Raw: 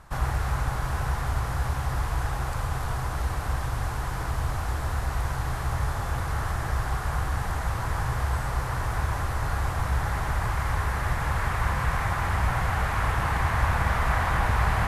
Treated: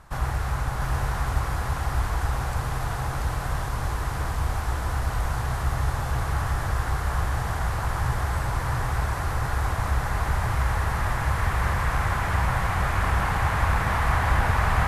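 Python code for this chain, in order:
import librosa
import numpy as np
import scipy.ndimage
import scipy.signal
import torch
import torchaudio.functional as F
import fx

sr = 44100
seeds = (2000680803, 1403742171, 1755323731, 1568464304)

y = x + 10.0 ** (-3.0 / 20.0) * np.pad(x, (int(687 * sr / 1000.0), 0))[:len(x)]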